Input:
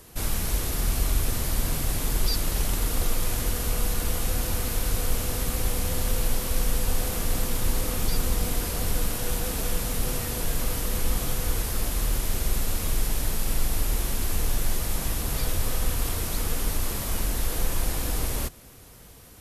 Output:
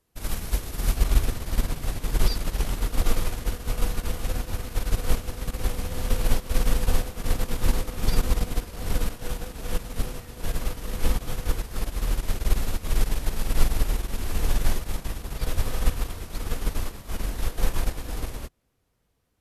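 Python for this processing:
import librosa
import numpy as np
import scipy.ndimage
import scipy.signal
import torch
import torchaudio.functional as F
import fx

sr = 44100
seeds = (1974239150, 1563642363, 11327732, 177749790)

y = fx.high_shelf(x, sr, hz=6300.0, db=fx.steps((0.0, -5.0), (0.95, -10.5)))
y = fx.upward_expand(y, sr, threshold_db=-38.0, expansion=2.5)
y = y * 10.0 ** (8.0 / 20.0)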